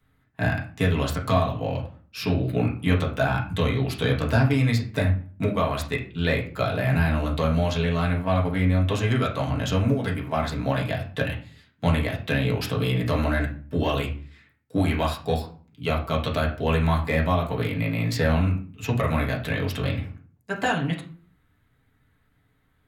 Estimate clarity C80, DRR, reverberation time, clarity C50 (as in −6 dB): 14.0 dB, −3.0 dB, 0.45 s, 9.5 dB